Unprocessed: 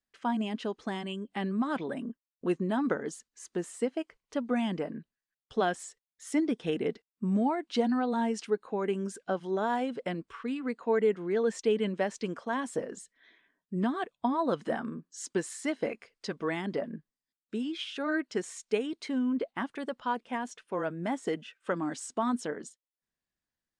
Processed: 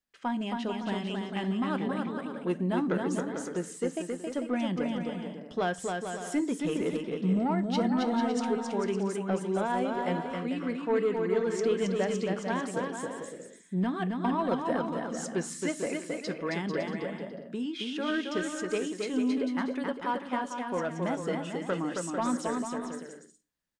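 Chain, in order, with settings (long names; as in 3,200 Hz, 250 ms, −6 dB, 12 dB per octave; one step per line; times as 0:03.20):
soft clipping −20.5 dBFS, distortion −20 dB
bouncing-ball delay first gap 270 ms, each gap 0.65×, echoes 5
on a send at −12.5 dB: convolution reverb RT60 0.40 s, pre-delay 3 ms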